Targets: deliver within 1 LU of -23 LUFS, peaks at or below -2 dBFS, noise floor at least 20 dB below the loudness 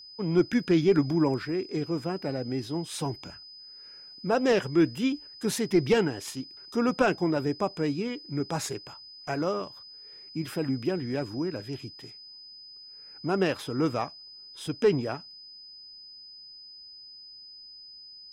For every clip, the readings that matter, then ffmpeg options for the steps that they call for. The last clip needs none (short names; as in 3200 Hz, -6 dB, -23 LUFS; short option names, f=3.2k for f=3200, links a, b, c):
steady tone 5000 Hz; tone level -45 dBFS; loudness -28.5 LUFS; peak -12.5 dBFS; loudness target -23.0 LUFS
-> -af "bandreject=f=5k:w=30"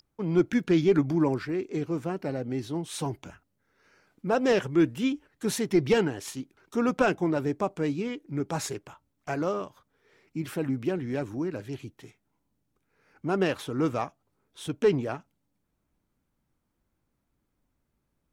steady tone none; loudness -28.5 LUFS; peak -12.5 dBFS; loudness target -23.0 LUFS
-> -af "volume=5.5dB"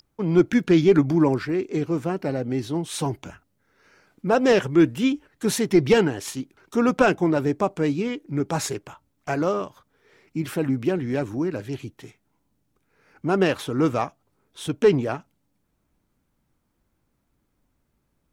loudness -23.0 LUFS; peak -7.0 dBFS; noise floor -72 dBFS